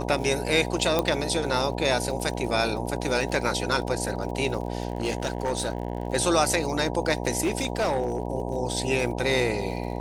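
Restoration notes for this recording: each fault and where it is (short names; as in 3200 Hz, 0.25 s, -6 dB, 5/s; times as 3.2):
buzz 60 Hz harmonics 16 -31 dBFS
crackle 51/s -35 dBFS
0.99 pop -9 dBFS
4.88–6.08 clipped -21 dBFS
7.42–8.27 clipped -20 dBFS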